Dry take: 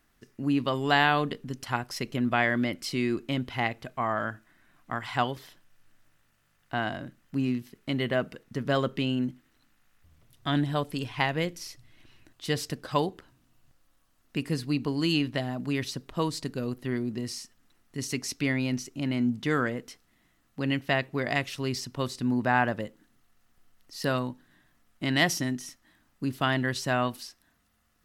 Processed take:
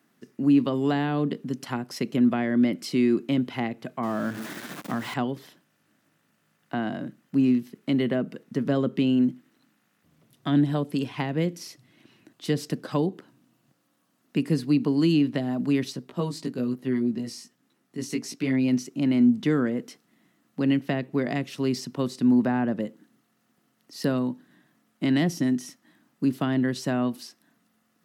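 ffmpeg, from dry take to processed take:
ffmpeg -i in.wav -filter_complex "[0:a]asettb=1/sr,asplit=3[link_01][link_02][link_03];[link_01]atrim=end=4.034[link_04];[link_02]atrim=start=4.03:end=5.14,asetpts=PTS-STARTPTS,afade=type=in:duration=0.004:curve=qsin,afade=type=out:start_time=1.106:duration=0.004:curve=qsin,aeval=exprs='val(0)+0.5*0.0224*sgn(val(0))':channel_layout=same[link_05];[link_03]atrim=start=5.136[link_06];[link_04][link_05]acrossfade=duration=0.004:curve1=hsin:curve2=qsin[link_07];[link_07][link_06]acrossfade=duration=0.004:curve1=qsin:curve2=hsin,asettb=1/sr,asplit=3[link_08][link_09][link_10];[link_08]atrim=end=15.924[link_11];[link_09]atrim=start=15.92:end=18.68,asetpts=PTS-STARTPTS,afade=type=in:duration=0.004:curve=qsin,afade=type=out:start_time=2.756:duration=0.004:curve=qsin,flanger=delay=15:depth=2.9:speed=1.1[link_12];[link_10]atrim=start=18.676[link_13];[link_11][link_12]acrossfade=duration=0.004:curve1=hsin:curve2=qsin[link_14];[link_14][link_13]acrossfade=duration=0.004:curve1=qsin:curve2=hsin,highpass=frequency=170:width=0.5412,highpass=frequency=170:width=1.3066,lowshelf=frequency=430:gain=11,acrossover=split=430[link_15][link_16];[link_16]acompressor=threshold=-31dB:ratio=4[link_17];[link_15][link_17]amix=inputs=2:normalize=0" out.wav

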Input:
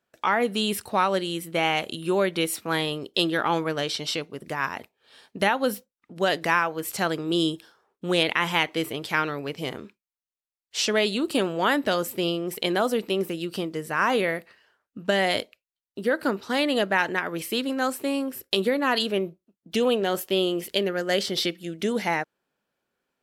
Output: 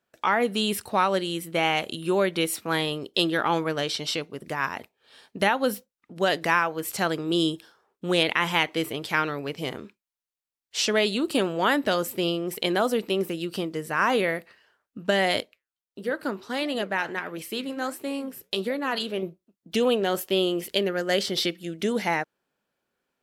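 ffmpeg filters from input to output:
ffmpeg -i in.wav -filter_complex "[0:a]asettb=1/sr,asplit=3[link_01][link_02][link_03];[link_01]atrim=end=15.404[link_04];[link_02]atrim=start=15.4:end=19.23,asetpts=PTS-STARTPTS,afade=type=in:duration=0.004:curve=qsin,afade=type=out:start_time=3.826:duration=0.004:curve=qsin,flanger=delay=2:depth=7.8:regen=-85:speed=1.5:shape=triangular[link_05];[link_03]atrim=start=19.226[link_06];[link_04][link_05]acrossfade=duration=0.004:curve1=hsin:curve2=qsin[link_07];[link_07][link_06]acrossfade=duration=0.004:curve1=qsin:curve2=hsin" out.wav

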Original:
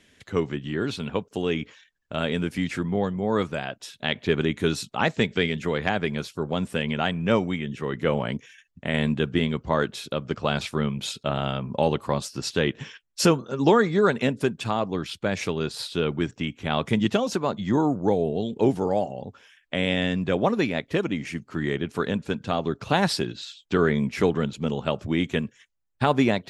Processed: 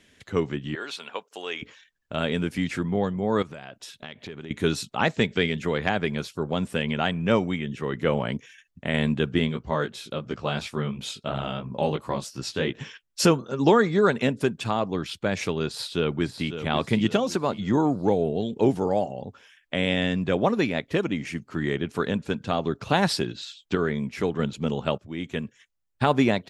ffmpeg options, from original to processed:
ffmpeg -i in.wav -filter_complex "[0:a]asettb=1/sr,asplit=3[link_01][link_02][link_03];[link_01]atrim=end=0.754[link_04];[link_02]atrim=start=0.75:end=1.62,asetpts=PTS-STARTPTS,afade=type=in:duration=0.004:curve=qsin,afade=type=out:start_time=0.866:duration=0.004:curve=qsin,highpass=720[link_05];[link_03]atrim=start=1.616[link_06];[link_04][link_05]acrossfade=duration=0.004:curve1=hsin:curve2=qsin[link_07];[link_07][link_06]acrossfade=duration=0.004:curve1=qsin:curve2=hsin,asettb=1/sr,asplit=3[link_08][link_09][link_10];[link_08]atrim=end=3.424[link_11];[link_09]atrim=start=3.42:end=4.51,asetpts=PTS-STARTPTS,afade=type=in:duration=0.004:curve=qsin,afade=type=out:start_time=1.086:duration=0.004:curve=qsin,acompressor=threshold=-36dB:ratio=5:attack=3.2:release=140:knee=1:detection=peak[link_12];[link_10]atrim=start=4.506[link_13];[link_11][link_12]acrossfade=duration=0.004:curve1=hsin:curve2=qsin[link_14];[link_14][link_13]acrossfade=duration=0.004:curve1=qsin:curve2=hsin,asplit=3[link_15][link_16][link_17];[link_15]afade=type=out:start_time=9.49:duration=0.02[link_18];[link_16]flanger=delay=15.5:depth=4.8:speed=2.9,afade=type=in:start_time=9.49:duration=0.02,afade=type=out:start_time=12.72:duration=0.02[link_19];[link_17]afade=type=in:start_time=12.72:duration=0.02[link_20];[link_18][link_19][link_20]amix=inputs=3:normalize=0,asplit=2[link_21][link_22];[link_22]afade=type=in:start_time=15.68:duration=0.01,afade=type=out:start_time=16.58:duration=0.01,aecho=0:1:550|1100|1650|2200:0.316228|0.126491|0.0505964|0.0202386[link_23];[link_21][link_23]amix=inputs=2:normalize=0,asplit=4[link_24][link_25][link_26][link_27];[link_24]atrim=end=23.752[link_28];[link_25]atrim=start=23.748:end=24.392,asetpts=PTS-STARTPTS,volume=-4.5dB[link_29];[link_26]atrim=start=24.388:end=24.98,asetpts=PTS-STARTPTS,afade=type=out:start_time=0.588:duration=0.004:curve=hsin:silence=0.112202[link_30];[link_27]atrim=start=24.98,asetpts=PTS-STARTPTS,afade=type=in:duration=1.06:curve=qsin:silence=0.112202[link_31];[link_28][link_29]acrossfade=duration=0.004:curve1=hsin:curve2=hsin[link_32];[link_30][link_31]concat=n=2:v=0:a=1[link_33];[link_32][link_33]acrossfade=duration=0.004:curve1=hsin:curve2=hsin" out.wav

